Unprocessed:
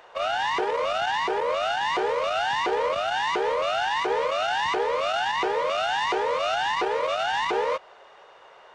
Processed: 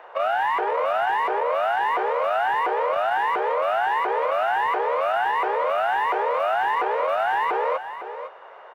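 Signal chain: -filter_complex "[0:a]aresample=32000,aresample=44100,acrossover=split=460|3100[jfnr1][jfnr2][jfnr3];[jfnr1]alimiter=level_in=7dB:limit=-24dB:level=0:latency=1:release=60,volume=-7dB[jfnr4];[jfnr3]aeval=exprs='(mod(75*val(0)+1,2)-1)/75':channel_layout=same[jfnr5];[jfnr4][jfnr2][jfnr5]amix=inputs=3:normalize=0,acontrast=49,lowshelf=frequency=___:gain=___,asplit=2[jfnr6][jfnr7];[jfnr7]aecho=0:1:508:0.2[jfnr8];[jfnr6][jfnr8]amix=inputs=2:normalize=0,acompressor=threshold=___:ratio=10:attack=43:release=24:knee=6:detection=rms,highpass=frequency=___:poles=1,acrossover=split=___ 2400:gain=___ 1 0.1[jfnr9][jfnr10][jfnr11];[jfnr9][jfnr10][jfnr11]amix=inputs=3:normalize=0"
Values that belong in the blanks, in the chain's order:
350, 9.5, -21dB, 96, 430, 0.112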